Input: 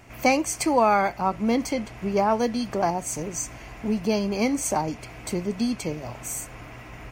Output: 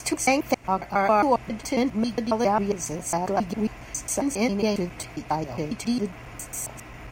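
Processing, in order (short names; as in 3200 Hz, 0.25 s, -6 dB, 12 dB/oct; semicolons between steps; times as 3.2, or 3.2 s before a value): slices in reverse order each 0.136 s, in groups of 5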